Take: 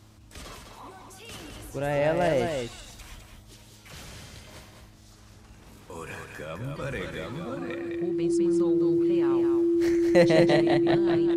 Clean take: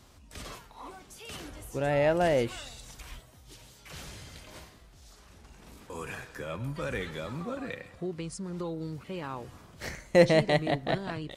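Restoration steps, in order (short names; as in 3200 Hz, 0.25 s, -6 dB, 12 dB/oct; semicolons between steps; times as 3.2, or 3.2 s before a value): de-hum 106.2 Hz, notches 3; notch 340 Hz, Q 30; inverse comb 0.207 s -5.5 dB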